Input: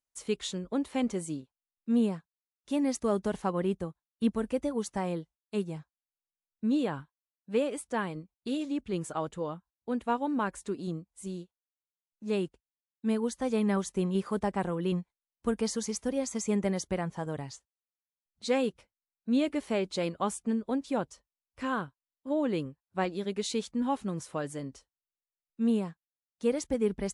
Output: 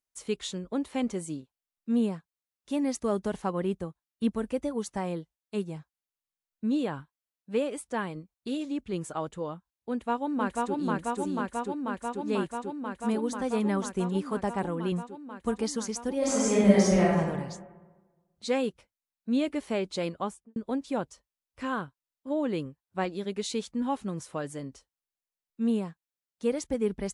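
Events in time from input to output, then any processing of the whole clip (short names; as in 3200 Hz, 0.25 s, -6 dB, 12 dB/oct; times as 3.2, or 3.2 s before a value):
9.91–10.76 echo throw 0.49 s, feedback 85%, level -1 dB
16.18–17.18 reverb throw, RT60 1.3 s, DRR -8.5 dB
20.13–20.56 studio fade out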